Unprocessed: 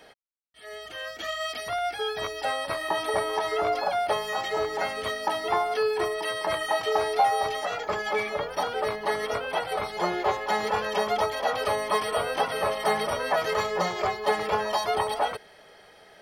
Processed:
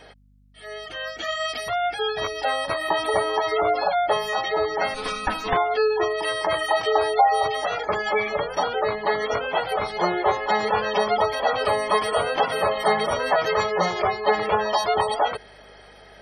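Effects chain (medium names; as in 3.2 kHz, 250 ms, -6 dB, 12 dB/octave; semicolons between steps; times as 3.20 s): 4.94–5.57 s: comb filter that takes the minimum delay 4 ms; spectral gate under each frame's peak -25 dB strong; hum 50 Hz, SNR 33 dB; trim +4.5 dB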